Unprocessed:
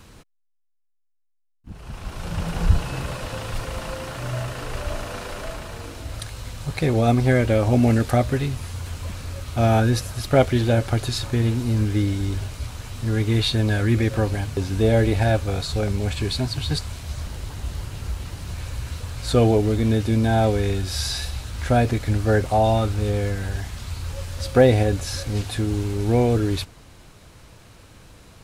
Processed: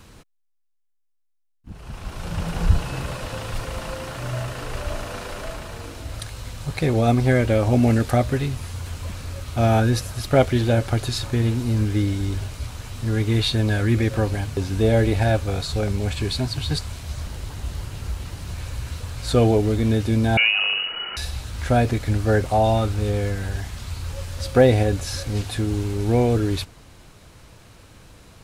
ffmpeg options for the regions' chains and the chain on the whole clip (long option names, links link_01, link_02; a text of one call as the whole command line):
ffmpeg -i in.wav -filter_complex "[0:a]asettb=1/sr,asplit=3[link_01][link_02][link_03];[link_01]atrim=end=20.374[link_04];[link_02]atrim=start=20.37:end=21.17,asetpts=PTS-STARTPTS,afade=type=in:duration=0.004:curve=qsin,afade=type=out:start_time=0.796:duration=0.004:curve=qsin,aeval=exprs='val(0)+0.5*0.0501*sgn(val(0))':channel_layout=same,highpass=frequency=120:poles=1,lowpass=frequency=2600:width_type=q:width=0.5098,lowpass=frequency=2600:width_type=q:width=0.6013,lowpass=frequency=2600:width_type=q:width=0.9,lowpass=frequency=2600:width_type=q:width=2.563,afreqshift=-3000[link_05];[link_03]atrim=start=21.166[link_06];[link_04][link_05]acrossfade=duration=0.004:curve1=hsin:curve2=qsin[link_07];[link_07][link_06]acrossfade=duration=0.004:curve1=qsin:curve2=hsin" out.wav